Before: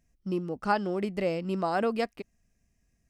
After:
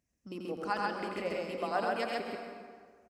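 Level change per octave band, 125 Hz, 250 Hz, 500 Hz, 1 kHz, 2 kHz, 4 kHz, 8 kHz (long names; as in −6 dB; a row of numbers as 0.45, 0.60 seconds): −12.0 dB, −9.0 dB, −5.0 dB, −3.0 dB, −1.0 dB, −0.5 dB, can't be measured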